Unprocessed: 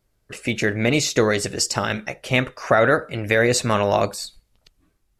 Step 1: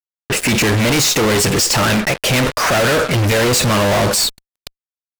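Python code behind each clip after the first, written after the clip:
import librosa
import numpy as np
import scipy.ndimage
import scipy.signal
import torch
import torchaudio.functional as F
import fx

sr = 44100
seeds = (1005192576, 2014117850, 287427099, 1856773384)

y = fx.fuzz(x, sr, gain_db=43.0, gate_db=-43.0)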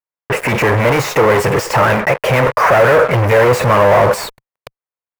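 y = fx.graphic_eq(x, sr, hz=(125, 250, 500, 1000, 2000, 4000, 8000), db=(9, -3, 12, 11, 8, -6, -5))
y = y * librosa.db_to_amplitude(-6.5)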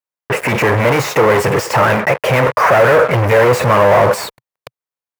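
y = scipy.signal.sosfilt(scipy.signal.butter(2, 73.0, 'highpass', fs=sr, output='sos'), x)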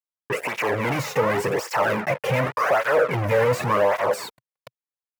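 y = fx.flanger_cancel(x, sr, hz=0.88, depth_ms=3.2)
y = y * librosa.db_to_amplitude(-7.0)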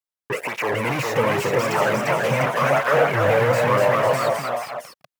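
y = fx.echo_pitch(x, sr, ms=442, semitones=1, count=3, db_per_echo=-3.0)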